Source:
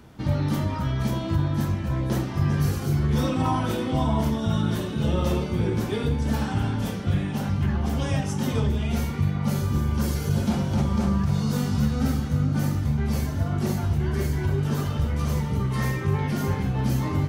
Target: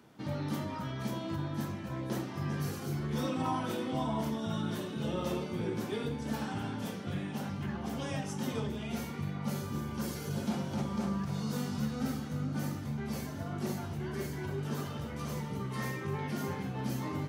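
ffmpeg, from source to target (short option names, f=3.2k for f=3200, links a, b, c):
-af "highpass=170,volume=-7.5dB"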